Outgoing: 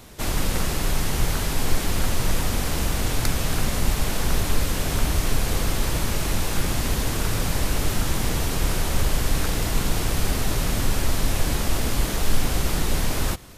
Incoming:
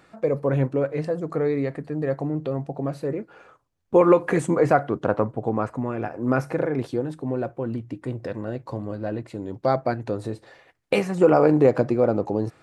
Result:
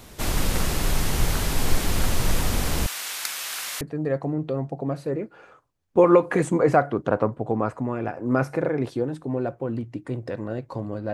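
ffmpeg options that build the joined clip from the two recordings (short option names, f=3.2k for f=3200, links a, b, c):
-filter_complex "[0:a]asettb=1/sr,asplit=3[a][b][c];[a]atrim=end=2.864[d];[b]atrim=start=2.86:end=3.81,asetpts=PTS-STARTPTS,afade=t=in:d=0.004:c=qsin,afade=t=out:st=0.946:d=0.004:c=qsin,highpass=1.4k[e];[c]atrim=start=3.806[f];[d][e]acrossfade=d=0.004:c1=hsin:c2=qsin[g];[g][f]acrossfade=d=0.004:c1=qsin:c2=hsin,apad=whole_dur=11.13,atrim=end=11.13,atrim=end=3.812[h];[1:a]atrim=start=1.778:end=9.1[i];[h][i]acrossfade=d=0.004:c1=hsin:c2=hsin"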